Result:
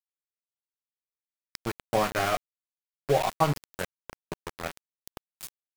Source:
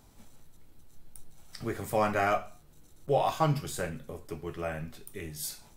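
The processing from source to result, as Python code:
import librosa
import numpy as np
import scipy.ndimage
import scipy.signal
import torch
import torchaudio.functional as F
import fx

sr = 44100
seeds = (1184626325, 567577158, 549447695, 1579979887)

y = fx.transient(x, sr, attack_db=5, sustain_db=0)
y = np.where(np.abs(y) >= 10.0 ** (-26.5 / 20.0), y, 0.0)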